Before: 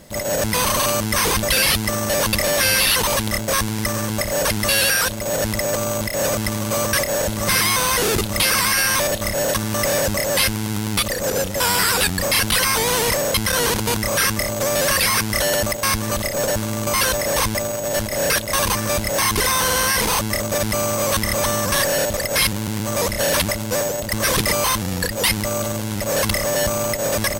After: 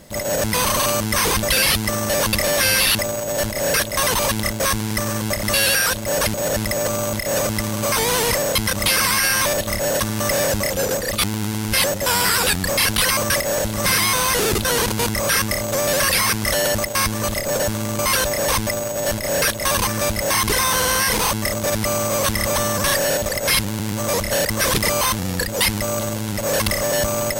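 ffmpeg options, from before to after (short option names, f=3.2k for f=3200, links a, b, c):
-filter_complex "[0:a]asplit=13[a][b][c][d][e][f][g][h][i][j][k][l][m];[a]atrim=end=2.952[n];[b]atrim=start=17.508:end=18.632[o];[c]atrim=start=2.948:end=4.312[p];[d]atrim=start=4.578:end=5.222[q];[e]atrim=start=4.308:end=4.582[r];[f]atrim=start=5.218:end=6.802[s];[g]atrim=start=12.708:end=13.522[t];[h]atrim=start=8.268:end=10.272[u];[i]atrim=start=10.268:end=11.482,asetpts=PTS-STARTPTS,areverse[v];[j]atrim=start=11.478:end=12.712[w];[k]atrim=start=6.798:end=8.272[x];[l]atrim=start=13.518:end=23.332[y];[m]atrim=start=24.078[z];[n][o]acrossfade=d=0.004:c1=hsin:c2=hsin[aa];[aa][p]acrossfade=d=0.004:c1=hsin:c2=hsin[ab];[ab][q]acrossfade=d=0.004:c1=hsin:c2=hsin[ac];[ac][r]acrossfade=d=0.004:c1=hsin:c2=hsin[ad];[ad][s]acrossfade=d=0.004:c1=hsin:c2=hsin[ae];[ae][t]acrossfade=d=0.004:c1=hsin:c2=hsin[af];[af][u]acrossfade=d=0.004:c1=hsin:c2=hsin[ag];[ag][v]acrossfade=d=0.004:c1=hsin:c2=hsin[ah];[ah][w]acrossfade=d=0.004:c1=hsin:c2=hsin[ai];[ai][x]acrossfade=d=0.004:c1=hsin:c2=hsin[aj];[aj][y]acrossfade=d=0.004:c1=hsin:c2=hsin[ak];[ak][z]acrossfade=d=0.004:c1=hsin:c2=hsin"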